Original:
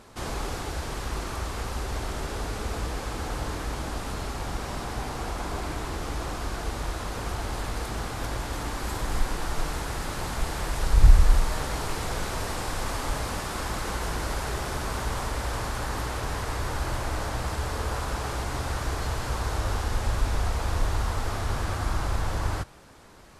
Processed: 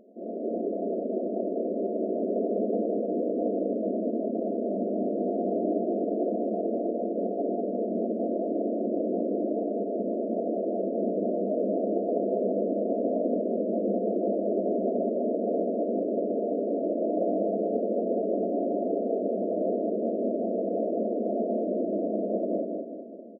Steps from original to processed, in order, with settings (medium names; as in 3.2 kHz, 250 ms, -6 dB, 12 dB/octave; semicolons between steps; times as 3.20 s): FFT band-pass 190–710 Hz; level rider gain up to 9.5 dB; feedback delay 198 ms, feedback 44%, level -3.5 dB